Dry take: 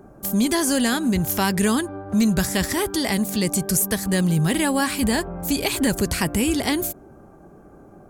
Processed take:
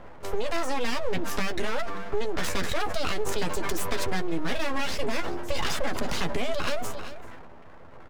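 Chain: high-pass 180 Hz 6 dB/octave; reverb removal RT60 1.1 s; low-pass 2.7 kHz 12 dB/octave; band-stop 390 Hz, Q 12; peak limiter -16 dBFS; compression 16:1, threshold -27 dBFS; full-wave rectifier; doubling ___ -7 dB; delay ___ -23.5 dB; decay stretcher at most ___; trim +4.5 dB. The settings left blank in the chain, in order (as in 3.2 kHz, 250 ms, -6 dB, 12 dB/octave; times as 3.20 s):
12 ms, 392 ms, 29 dB/s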